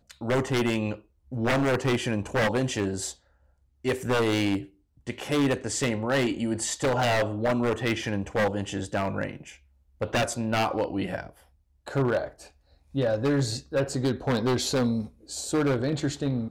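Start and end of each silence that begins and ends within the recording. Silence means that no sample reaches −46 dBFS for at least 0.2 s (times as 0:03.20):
0:01.00–0:01.32
0:03.14–0:03.84
0:04.67–0:05.07
0:09.57–0:10.01
0:11.40–0:11.86
0:12.48–0:12.94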